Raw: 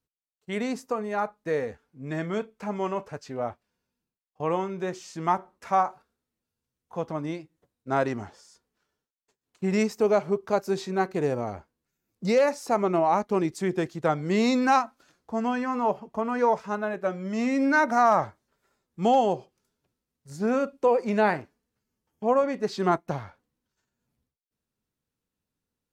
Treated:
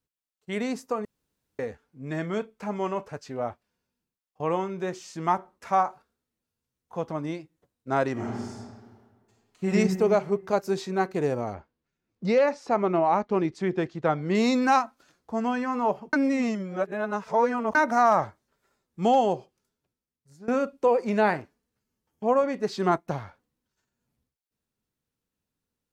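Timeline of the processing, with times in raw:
0:01.05–0:01.59: fill with room tone
0:08.12–0:09.72: thrown reverb, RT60 1.7 s, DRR −4.5 dB
0:11.54–0:14.35: low-pass filter 4,100 Hz
0:16.13–0:17.75: reverse
0:19.32–0:20.48: fade out, to −20 dB

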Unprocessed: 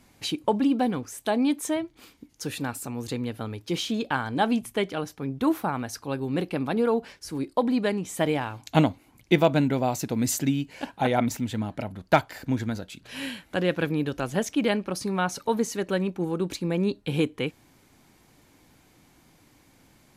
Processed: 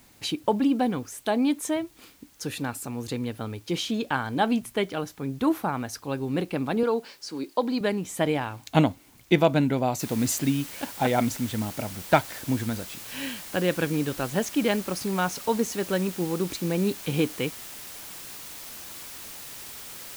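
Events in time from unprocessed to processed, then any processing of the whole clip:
0:06.83–0:07.81: loudspeaker in its box 260–8,500 Hz, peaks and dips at 680 Hz −4 dB, 1,900 Hz −4 dB, 4,500 Hz +8 dB
0:10.00: noise floor change −59 dB −41 dB

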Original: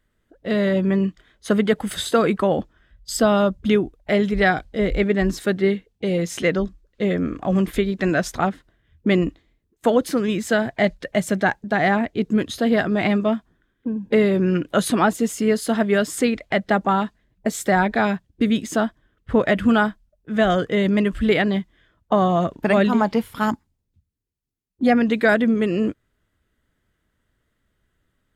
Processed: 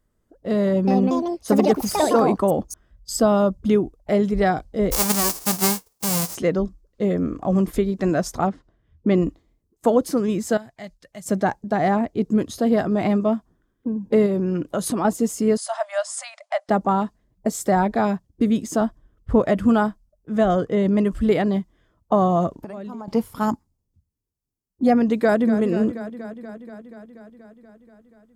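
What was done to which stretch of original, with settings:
0:00.64–0:03.13: delay with pitch and tempo change per echo 234 ms, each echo +5 semitones, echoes 2
0:04.91–0:06.34: spectral envelope flattened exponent 0.1
0:08.47–0:09.17: low-pass filter 5,100 Hz
0:10.57–0:11.26: guitar amp tone stack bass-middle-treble 5-5-5
0:14.26–0:15.05: downward compressor 4 to 1, threshold −19 dBFS
0:15.57–0:16.69: linear-phase brick-wall band-pass 560–11,000 Hz
0:18.81–0:19.41: low-shelf EQ 76 Hz +11.5 dB
0:20.43–0:20.99: high-shelf EQ 6,300 Hz −8 dB
0:22.59–0:23.08: downward compressor 12 to 1, threshold −30 dBFS
0:25.15–0:25.61: delay throw 240 ms, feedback 75%, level −11.5 dB
whole clip: flat-topped bell 2,400 Hz −9.5 dB

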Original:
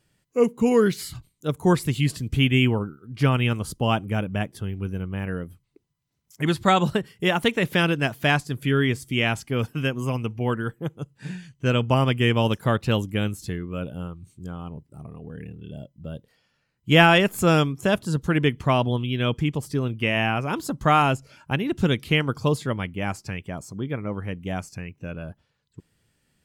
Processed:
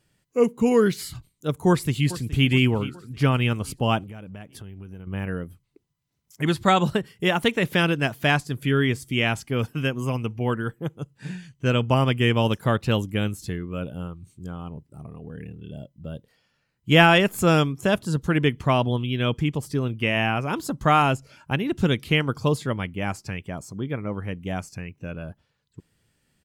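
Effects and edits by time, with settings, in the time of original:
0:01.68–0:02.49: delay throw 420 ms, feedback 50%, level −15.5 dB
0:04.03–0:05.07: downward compressor, threshold −36 dBFS

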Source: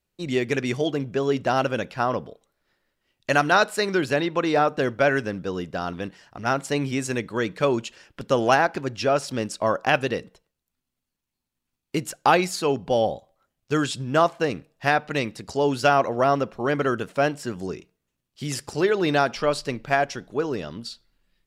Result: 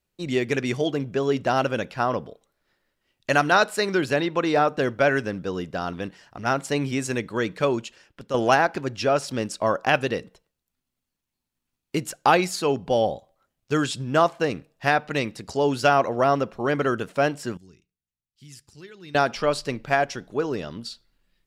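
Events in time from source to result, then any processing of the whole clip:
0:07.55–0:08.34: fade out, to −9 dB
0:17.57–0:19.15: guitar amp tone stack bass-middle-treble 6-0-2

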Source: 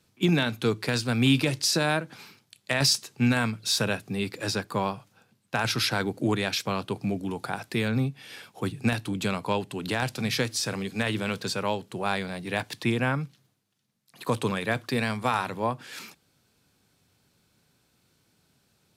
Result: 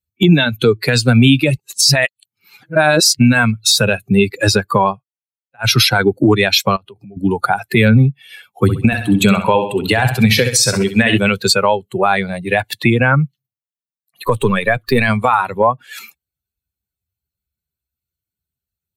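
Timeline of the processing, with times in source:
0:01.57–0:03.19: reverse
0:04.92–0:05.71: duck −21.5 dB, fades 0.12 s
0:06.76–0:07.17: downward compressor 16 to 1, threshold −39 dBFS
0:08.52–0:11.18: repeating echo 65 ms, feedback 53%, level −6 dB
0:14.26–0:15.08: gain on one half-wave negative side −3 dB
whole clip: spectral dynamics exaggerated over time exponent 2; downward compressor 6 to 1, threshold −35 dBFS; boost into a limiter +29.5 dB; level −1 dB

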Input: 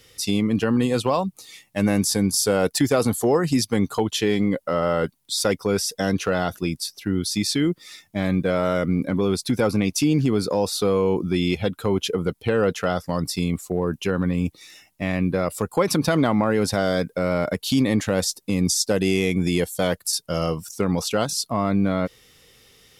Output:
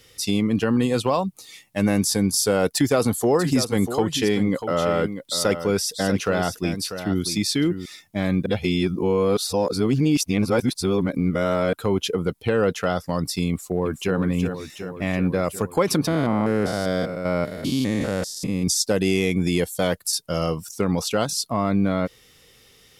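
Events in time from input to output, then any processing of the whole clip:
0:02.70–0:07.86: single-tap delay 642 ms −10 dB
0:08.46–0:11.73: reverse
0:13.48–0:14.18: delay throw 370 ms, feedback 70%, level −7.5 dB
0:16.07–0:18.68: spectrum averaged block by block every 200 ms

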